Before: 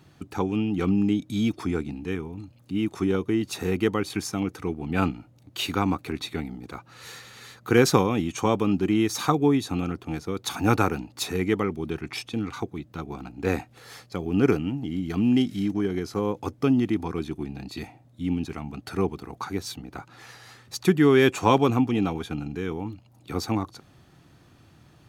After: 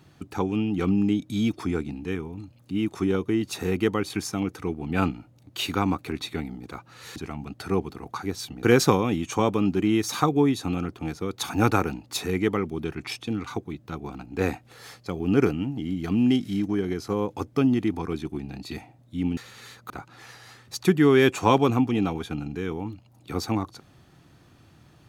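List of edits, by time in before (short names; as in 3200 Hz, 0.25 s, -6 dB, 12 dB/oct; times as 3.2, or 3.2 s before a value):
7.16–7.69 swap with 18.43–19.9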